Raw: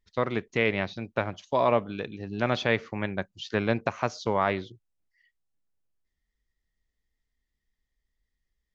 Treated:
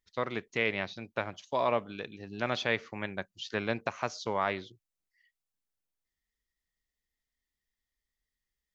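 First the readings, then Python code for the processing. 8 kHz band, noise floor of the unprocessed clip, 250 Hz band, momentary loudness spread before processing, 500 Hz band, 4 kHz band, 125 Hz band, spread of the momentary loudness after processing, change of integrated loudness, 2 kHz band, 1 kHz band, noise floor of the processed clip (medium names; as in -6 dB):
no reading, -83 dBFS, -7.5 dB, 10 LU, -6.0 dB, -2.0 dB, -9.0 dB, 10 LU, -5.0 dB, -3.0 dB, -4.5 dB, under -85 dBFS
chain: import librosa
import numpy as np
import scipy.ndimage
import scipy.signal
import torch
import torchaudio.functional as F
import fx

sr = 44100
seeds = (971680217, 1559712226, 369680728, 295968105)

y = fx.tilt_eq(x, sr, slope=1.5)
y = F.gain(torch.from_numpy(y), -4.5).numpy()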